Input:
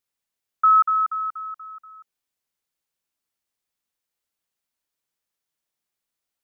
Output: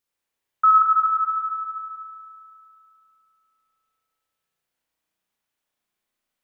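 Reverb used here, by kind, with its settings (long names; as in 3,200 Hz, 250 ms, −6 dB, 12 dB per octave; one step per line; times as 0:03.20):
spring reverb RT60 2.8 s, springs 34 ms, chirp 55 ms, DRR −4 dB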